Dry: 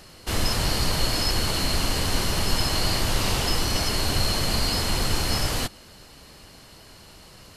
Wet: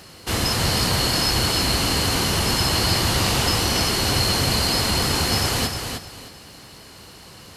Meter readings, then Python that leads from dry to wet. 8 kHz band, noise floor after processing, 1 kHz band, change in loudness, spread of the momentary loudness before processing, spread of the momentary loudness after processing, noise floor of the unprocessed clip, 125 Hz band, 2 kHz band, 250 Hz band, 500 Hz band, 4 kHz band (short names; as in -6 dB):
+5.0 dB, -44 dBFS, +5.0 dB, +4.5 dB, 2 LU, 6 LU, -48 dBFS, +4.0 dB, +5.0 dB, +5.0 dB, +4.5 dB, +5.0 dB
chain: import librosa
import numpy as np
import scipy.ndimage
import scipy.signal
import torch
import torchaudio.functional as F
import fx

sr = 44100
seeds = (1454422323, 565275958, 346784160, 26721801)

y = scipy.signal.sosfilt(scipy.signal.butter(2, 63.0, 'highpass', fs=sr, output='sos'), x)
y = fx.notch(y, sr, hz=610.0, q=18.0)
y = fx.echo_feedback(y, sr, ms=309, feedback_pct=25, wet_db=-6.0)
y = fx.dmg_crackle(y, sr, seeds[0], per_s=110.0, level_db=-48.0)
y = y * 10.0 ** (4.0 / 20.0)